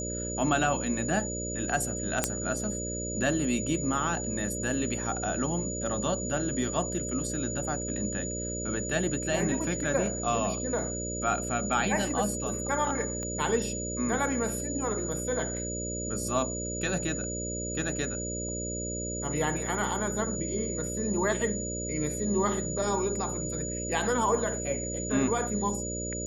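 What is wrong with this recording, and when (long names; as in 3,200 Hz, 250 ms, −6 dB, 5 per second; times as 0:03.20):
mains buzz 60 Hz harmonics 10 −36 dBFS
whistle 6,900 Hz −35 dBFS
0:02.24: click −8 dBFS
0:13.23: click −24 dBFS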